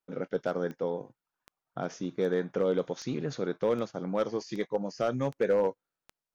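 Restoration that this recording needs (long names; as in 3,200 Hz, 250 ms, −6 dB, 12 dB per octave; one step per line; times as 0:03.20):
clipped peaks rebuilt −19 dBFS
click removal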